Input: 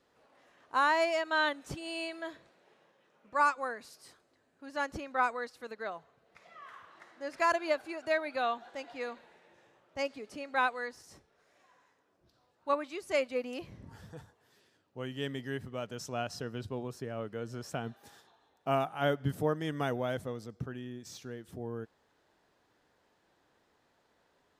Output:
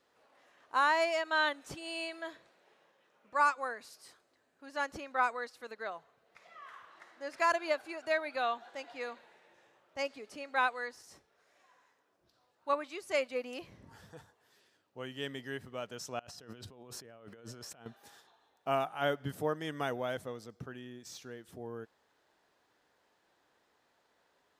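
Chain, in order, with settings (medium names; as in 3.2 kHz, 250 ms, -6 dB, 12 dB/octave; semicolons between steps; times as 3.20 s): bass shelf 300 Hz -9 dB; 16.19–17.86 s: compressor with a negative ratio -52 dBFS, ratio -1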